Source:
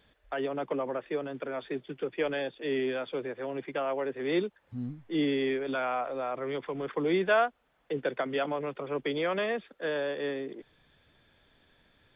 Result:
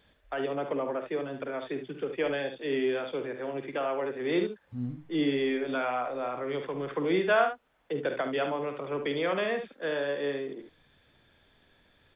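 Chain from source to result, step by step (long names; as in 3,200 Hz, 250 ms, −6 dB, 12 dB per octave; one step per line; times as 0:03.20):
ambience of single reflections 49 ms −10 dB, 72 ms −9 dB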